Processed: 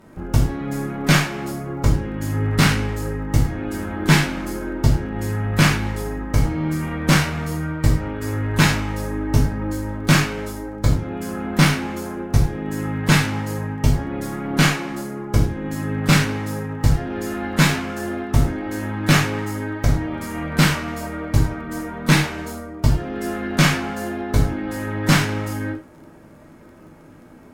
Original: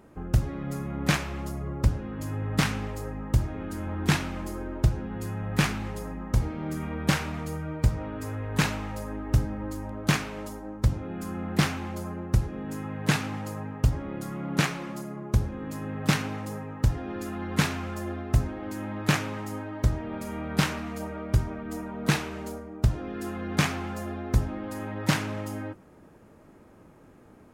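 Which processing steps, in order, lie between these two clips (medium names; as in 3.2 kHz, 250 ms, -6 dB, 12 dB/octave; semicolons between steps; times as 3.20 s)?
Chebyshev shaper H 6 -18 dB, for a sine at -9.5 dBFS; gated-style reverb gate 130 ms falling, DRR -4 dB; crackle 23 per s -47 dBFS; trim +3 dB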